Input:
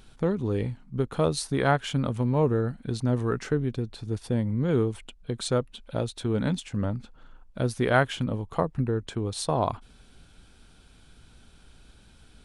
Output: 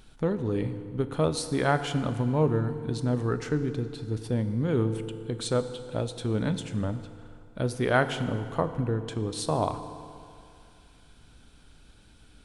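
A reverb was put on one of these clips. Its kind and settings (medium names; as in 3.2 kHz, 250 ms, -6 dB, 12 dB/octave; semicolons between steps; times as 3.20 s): FDN reverb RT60 2.5 s, low-frequency decay 0.9×, high-frequency decay 0.75×, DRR 9.5 dB; trim -1.5 dB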